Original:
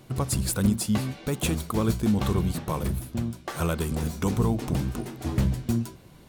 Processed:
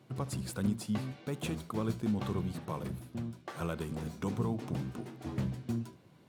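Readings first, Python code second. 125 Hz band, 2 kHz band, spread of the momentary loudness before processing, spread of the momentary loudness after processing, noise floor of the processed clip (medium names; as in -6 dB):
-10.0 dB, -9.5 dB, 7 LU, 7 LU, -60 dBFS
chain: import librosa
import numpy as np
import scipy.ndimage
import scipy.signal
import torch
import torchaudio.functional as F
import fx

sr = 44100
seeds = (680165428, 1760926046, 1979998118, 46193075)

y = scipy.signal.sosfilt(scipy.signal.butter(4, 94.0, 'highpass', fs=sr, output='sos'), x)
y = fx.high_shelf(y, sr, hz=6000.0, db=-10.5)
y = y + 10.0 ** (-21.0 / 20.0) * np.pad(y, (int(75 * sr / 1000.0), 0))[:len(y)]
y = y * 10.0 ** (-8.5 / 20.0)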